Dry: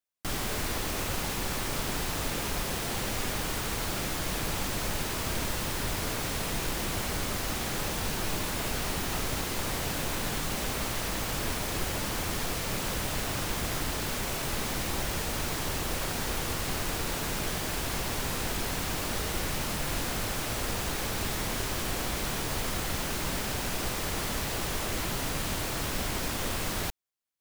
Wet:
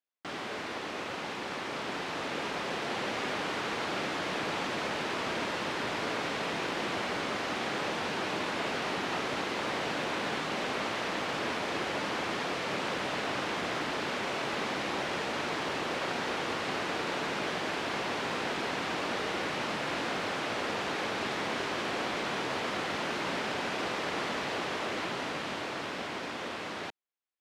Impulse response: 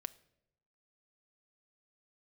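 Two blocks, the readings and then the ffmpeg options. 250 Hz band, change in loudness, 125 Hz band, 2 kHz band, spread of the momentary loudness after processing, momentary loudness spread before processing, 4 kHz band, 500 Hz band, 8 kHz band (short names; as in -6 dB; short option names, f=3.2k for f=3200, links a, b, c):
-1.0 dB, -2.0 dB, -10.5 dB, +2.0 dB, 4 LU, 0 LU, -2.0 dB, +2.0 dB, -12.5 dB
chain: -af "dynaudnorm=f=220:g=21:m=4.5dB,highpass=260,lowpass=3.3k,volume=-1.5dB"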